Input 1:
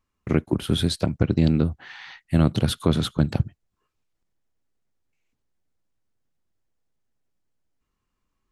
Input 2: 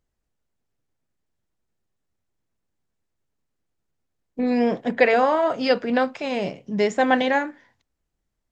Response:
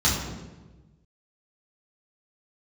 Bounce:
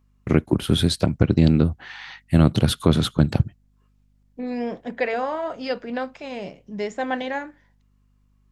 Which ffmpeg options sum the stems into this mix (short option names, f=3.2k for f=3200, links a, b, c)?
-filter_complex "[0:a]volume=3dB[a];[1:a]aeval=exprs='val(0)+0.00224*(sin(2*PI*50*n/s)+sin(2*PI*2*50*n/s)/2+sin(2*PI*3*50*n/s)/3+sin(2*PI*4*50*n/s)/4+sin(2*PI*5*50*n/s)/5)':c=same,volume=-7dB[b];[a][b]amix=inputs=2:normalize=0"